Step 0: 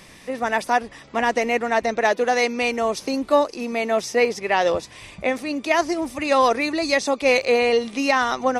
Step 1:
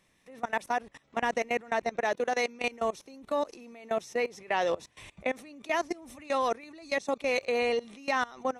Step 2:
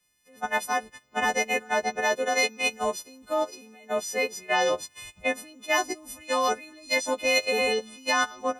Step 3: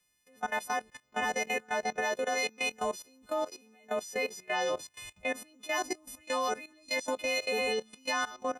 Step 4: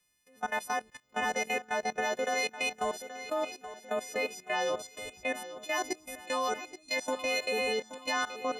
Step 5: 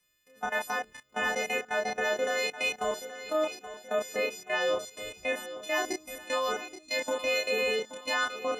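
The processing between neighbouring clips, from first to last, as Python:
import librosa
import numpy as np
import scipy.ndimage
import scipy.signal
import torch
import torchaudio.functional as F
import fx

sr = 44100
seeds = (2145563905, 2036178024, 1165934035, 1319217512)

y1 = fx.notch(x, sr, hz=4800.0, q=7.3)
y1 = fx.level_steps(y1, sr, step_db=21)
y1 = F.gain(torch.from_numpy(y1), -6.0).numpy()
y2 = fx.freq_snap(y1, sr, grid_st=3)
y2 = fx.band_widen(y2, sr, depth_pct=40)
y2 = F.gain(torch.from_numpy(y2), 3.0).numpy()
y3 = fx.level_steps(y2, sr, step_db=15)
y4 = fx.echo_feedback(y3, sr, ms=827, feedback_pct=44, wet_db=-13)
y5 = fx.doubler(y4, sr, ms=29.0, db=-2)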